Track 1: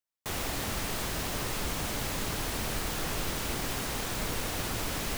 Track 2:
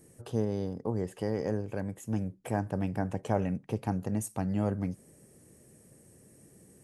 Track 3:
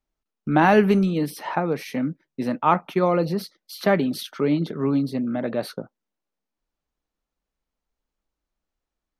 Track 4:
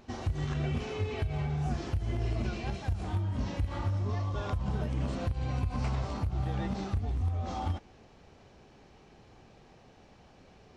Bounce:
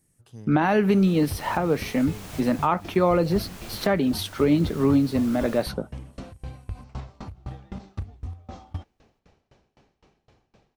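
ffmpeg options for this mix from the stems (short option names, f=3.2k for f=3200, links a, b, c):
-filter_complex "[0:a]adelay=450,volume=-2dB[a];[1:a]equalizer=f=490:t=o:w=1.8:g=-13,volume=-7.5dB[b];[2:a]volume=2.5dB,asplit=2[c][d];[3:a]aeval=exprs='val(0)*pow(10,-28*if(lt(mod(3.9*n/s,1),2*abs(3.9)/1000),1-mod(3.9*n/s,1)/(2*abs(3.9)/1000),(mod(3.9*n/s,1)-2*abs(3.9)/1000)/(1-2*abs(3.9)/1000))/20)':c=same,adelay=1050,volume=2dB[e];[d]apad=whole_len=252627[f];[a][f]sidechaincompress=threshold=-27dB:ratio=5:attack=9:release=850[g];[g][b][c][e]amix=inputs=4:normalize=0,alimiter=limit=-10.5dB:level=0:latency=1:release=160"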